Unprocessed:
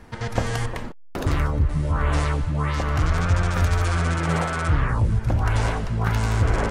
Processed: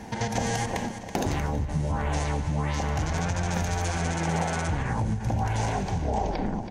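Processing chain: tape stop at the end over 1.00 s; HPF 100 Hz 6 dB/oct; limiter -15.5 dBFS, peak gain reduction 7 dB; feedback echo 0.327 s, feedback 50%, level -16 dB; reverb RT60 1.2 s, pre-delay 34 ms, DRR 14.5 dB; compressor 3:1, threshold -33 dBFS, peak gain reduction 10 dB; thirty-one-band EQ 200 Hz +8 dB, 800 Hz +9 dB, 1250 Hz -12 dB, 6300 Hz +9 dB; ending taper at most 130 dB/s; gain +6 dB

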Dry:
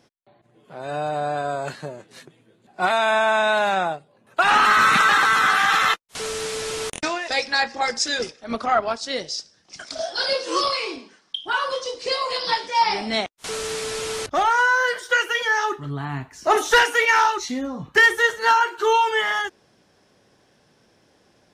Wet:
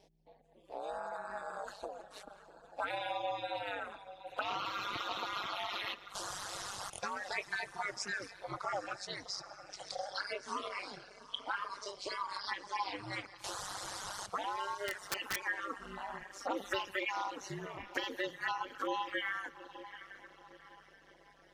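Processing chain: bin magnitudes rounded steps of 15 dB; envelope phaser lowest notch 220 Hz, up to 1700 Hz, full sweep at -14.5 dBFS; tone controls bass -5 dB, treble -5 dB; compressor 2.5:1, threshold -37 dBFS, peak gain reduction 13.5 dB; diffused feedback echo 0.792 s, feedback 43%, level -12.5 dB; reverb, pre-delay 80 ms, DRR 8.5 dB; reverb removal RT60 1.1 s; hum 60 Hz, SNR 31 dB; bell 150 Hz -13.5 dB 0.69 oct; ring modulator 99 Hz; 14.76–15.42 wrapped overs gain 29 dB; gain +1 dB

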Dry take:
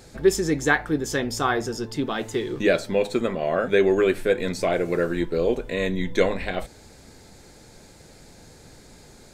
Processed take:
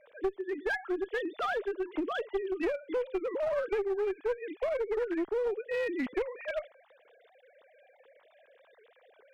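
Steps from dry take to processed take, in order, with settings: sine-wave speech; compressor 12:1, threshold -29 dBFS, peak gain reduction 23 dB; one-sided clip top -31 dBFS; gain +2 dB

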